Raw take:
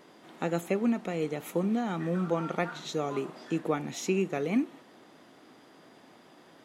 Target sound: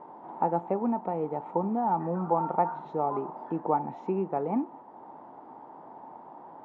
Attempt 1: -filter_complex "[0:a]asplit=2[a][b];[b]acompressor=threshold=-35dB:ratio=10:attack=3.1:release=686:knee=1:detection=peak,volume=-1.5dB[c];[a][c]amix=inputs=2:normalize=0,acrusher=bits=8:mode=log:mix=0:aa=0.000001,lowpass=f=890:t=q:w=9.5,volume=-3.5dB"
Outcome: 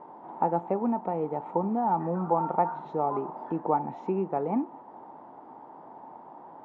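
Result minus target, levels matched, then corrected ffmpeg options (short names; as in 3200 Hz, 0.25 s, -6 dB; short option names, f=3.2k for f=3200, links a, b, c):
compressor: peak gain reduction -6 dB
-filter_complex "[0:a]asplit=2[a][b];[b]acompressor=threshold=-41.5dB:ratio=10:attack=3.1:release=686:knee=1:detection=peak,volume=-1.5dB[c];[a][c]amix=inputs=2:normalize=0,acrusher=bits=8:mode=log:mix=0:aa=0.000001,lowpass=f=890:t=q:w=9.5,volume=-3.5dB"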